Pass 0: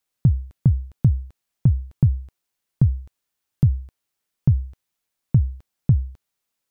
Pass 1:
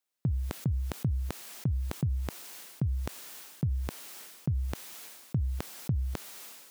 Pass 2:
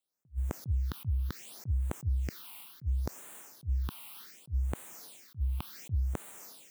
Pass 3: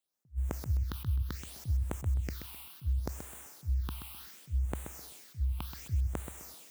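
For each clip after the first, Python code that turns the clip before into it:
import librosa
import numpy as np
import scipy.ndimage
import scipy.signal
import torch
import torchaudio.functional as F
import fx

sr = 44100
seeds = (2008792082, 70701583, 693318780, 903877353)

y1 = scipy.signal.sosfilt(scipy.signal.butter(2, 220.0, 'highpass', fs=sr, output='sos'), x)
y1 = fx.sustainer(y1, sr, db_per_s=37.0)
y1 = y1 * librosa.db_to_amplitude(-5.5)
y2 = fx.phaser_stages(y1, sr, stages=6, low_hz=440.0, high_hz=5000.0, hz=0.68, feedback_pct=25)
y2 = fx.attack_slew(y2, sr, db_per_s=400.0)
y3 = fx.echo_feedback(y2, sr, ms=129, feedback_pct=29, wet_db=-8.5)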